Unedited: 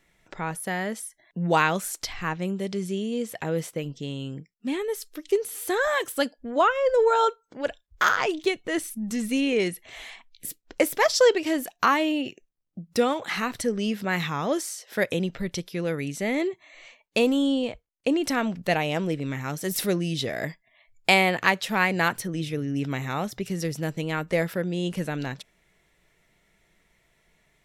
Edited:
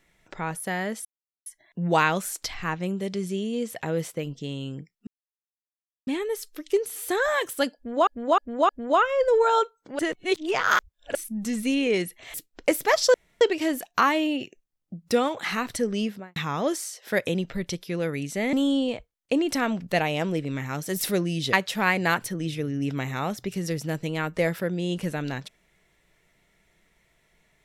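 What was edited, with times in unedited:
0:01.05: splice in silence 0.41 s
0:04.66: splice in silence 1.00 s
0:06.35–0:06.66: repeat, 4 plays
0:07.65–0:08.81: reverse
0:10.00–0:10.46: remove
0:11.26: splice in room tone 0.27 s
0:13.84–0:14.21: fade out and dull
0:16.38–0:17.28: remove
0:20.28–0:21.47: remove

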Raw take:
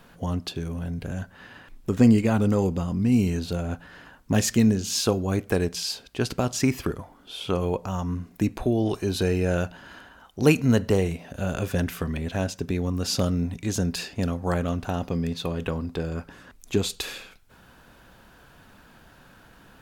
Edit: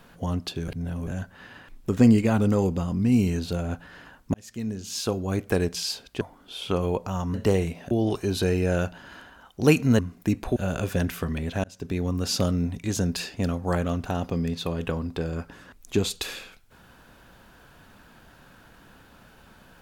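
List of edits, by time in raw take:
0:00.68–0:01.07: reverse
0:04.34–0:05.55: fade in linear
0:06.21–0:07.00: remove
0:08.13–0:08.70: swap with 0:10.78–0:11.35
0:12.43–0:12.90: fade in equal-power

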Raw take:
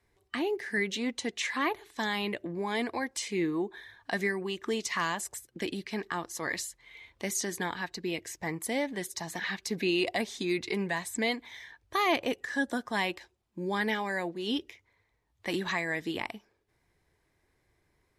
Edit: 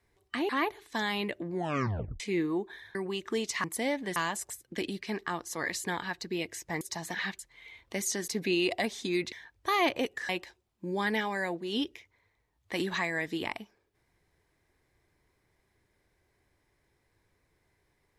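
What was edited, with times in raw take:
0:00.49–0:01.53: remove
0:02.56: tape stop 0.68 s
0:03.99–0:04.31: remove
0:06.68–0:07.57: move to 0:09.64
0:08.54–0:09.06: move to 0:05.00
0:10.68–0:11.59: remove
0:12.56–0:13.03: remove

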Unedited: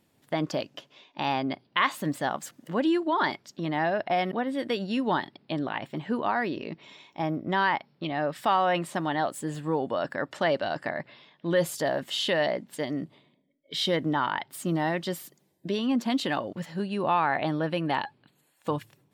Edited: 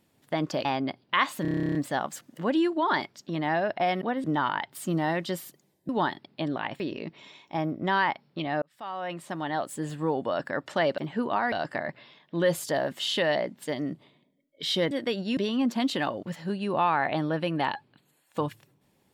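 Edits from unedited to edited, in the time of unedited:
0:00.65–0:01.28: remove
0:02.05: stutter 0.03 s, 12 plays
0:04.54–0:05.00: swap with 0:14.02–0:15.67
0:05.91–0:06.45: move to 0:10.63
0:08.27–0:09.50: fade in

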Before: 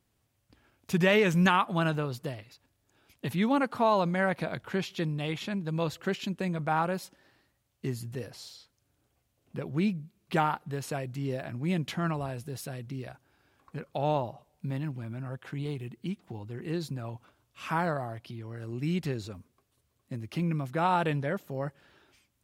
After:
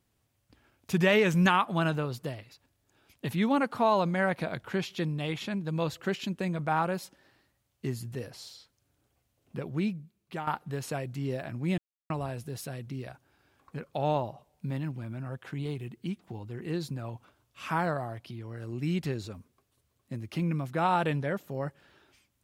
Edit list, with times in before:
0:09.58–0:10.47: fade out, to −12.5 dB
0:11.78–0:12.10: silence

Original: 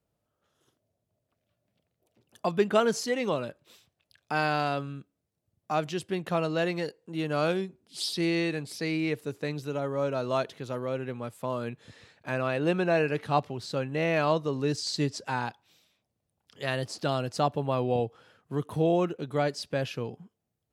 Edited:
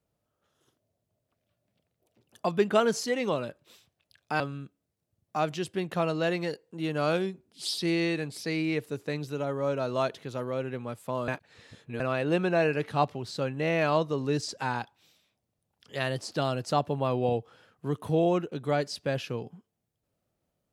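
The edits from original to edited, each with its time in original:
0:04.40–0:04.75: remove
0:11.63–0:12.35: reverse
0:14.83–0:15.15: remove

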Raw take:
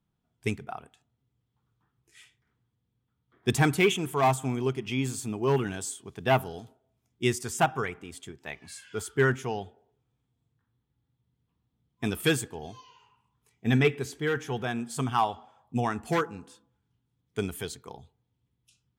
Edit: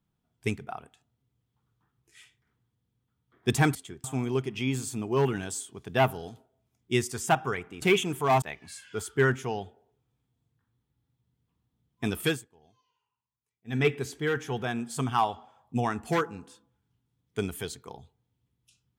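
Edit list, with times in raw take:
0:03.75–0:04.35: swap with 0:08.13–0:08.42
0:12.23–0:13.88: duck −21.5 dB, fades 0.21 s

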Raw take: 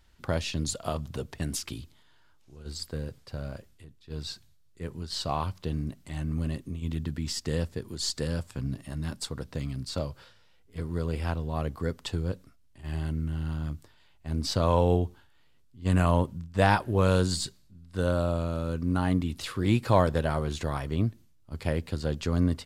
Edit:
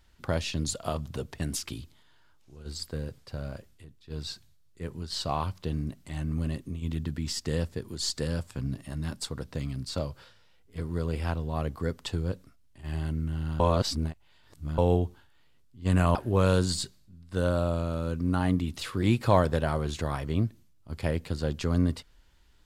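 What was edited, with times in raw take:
0:13.60–0:14.78: reverse
0:16.15–0:16.77: remove

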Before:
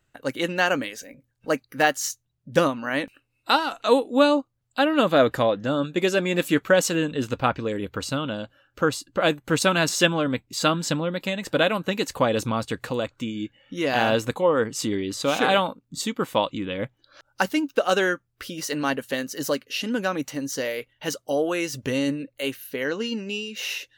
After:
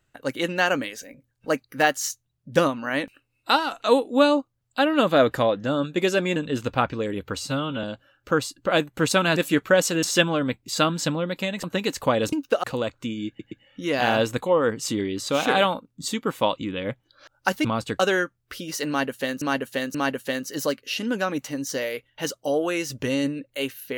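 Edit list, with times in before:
0:06.36–0:07.02: move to 0:09.87
0:08.03–0:08.34: time-stretch 1.5×
0:11.48–0:11.77: remove
0:12.46–0:12.81: swap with 0:17.58–0:17.89
0:13.45: stutter 0.12 s, 3 plays
0:18.78–0:19.31: repeat, 3 plays

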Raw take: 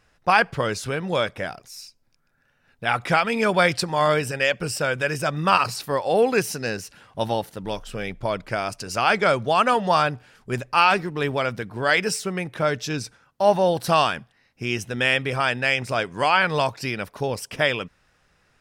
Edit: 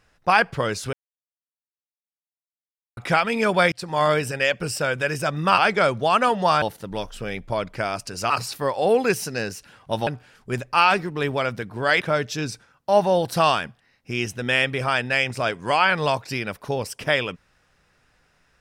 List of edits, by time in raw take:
0:00.93–0:02.97: silence
0:03.72–0:03.97: fade in
0:05.58–0:07.35: swap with 0:09.03–0:10.07
0:12.01–0:12.53: remove

